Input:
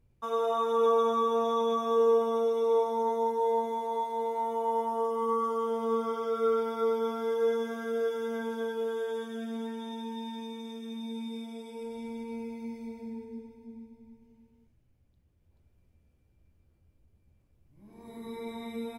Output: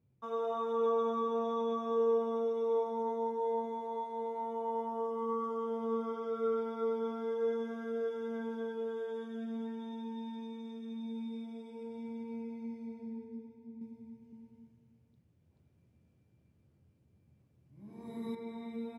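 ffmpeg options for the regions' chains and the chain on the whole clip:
-filter_complex "[0:a]asettb=1/sr,asplit=3[s0][s1][s2];[s0]atrim=end=13.814[s3];[s1]atrim=start=13.81:end=18.35,asetpts=PTS-STARTPTS,afade=t=in:d=0.004:c=qsin,afade=t=out:st=4.536:d=0.004:c=qsin,highshelf=f=5200:g=9.5,acontrast=39,aecho=1:1:515:0.266,atrim=end_sample=200214[s4];[s2]atrim=start=18.346[s5];[s3][s4]acrossfade=d=0.004:c1=hsin:c2=qsin[s6];[s6][s5]acrossfade=d=0.004:c1=qsin:c2=hsin,highpass=f=120:w=0.5412,highpass=f=120:w=1.3066,aemphasis=mode=reproduction:type=bsi,volume=0.422"

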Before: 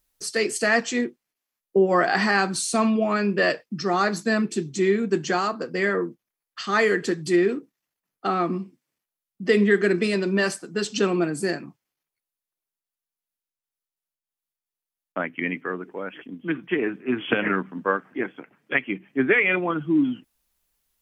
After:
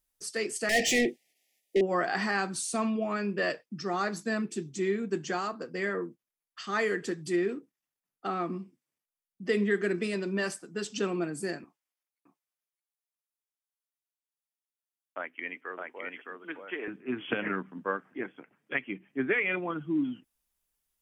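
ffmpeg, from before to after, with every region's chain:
-filter_complex "[0:a]asettb=1/sr,asplit=3[s0][s1][s2];[s0]atrim=end=0.694[s3];[s1]atrim=start=0.69:end=1.81,asetpts=PTS-STARTPTS,afade=t=in:d=0.004:c=qsin,afade=t=out:st=1.116:d=0.004:c=qsin,asplit=2[s4][s5];[s5]highpass=f=720:p=1,volume=28.2,asoftclip=type=tanh:threshold=0.376[s6];[s4][s6]amix=inputs=2:normalize=0,lowpass=f=5200:p=1,volume=0.501,asuperstop=centerf=1200:order=20:qfactor=1.2[s7];[s2]atrim=start=1.806[s8];[s3][s7]acrossfade=d=0.004:c1=hsin:c2=qsin[s9];[s9][s8]acrossfade=d=0.004:c1=qsin:c2=hsin,asettb=1/sr,asplit=3[s10][s11][s12];[s10]atrim=end=11.644[s13];[s11]atrim=start=11.64:end=16.88,asetpts=PTS-STARTPTS,afade=t=in:d=0.004:c=qsin,afade=t=out:st=5.236:d=0.004:c=qsin,highpass=480,aecho=1:1:613:0.668,atrim=end_sample=231084[s14];[s12]atrim=start=16.876[s15];[s13][s14]acrossfade=d=0.004:c1=hsin:c2=qsin[s16];[s16][s15]acrossfade=d=0.004:c1=qsin:c2=hsin,equalizer=f=9300:w=1.6:g=3,bandreject=f=4200:w=17,volume=0.376"

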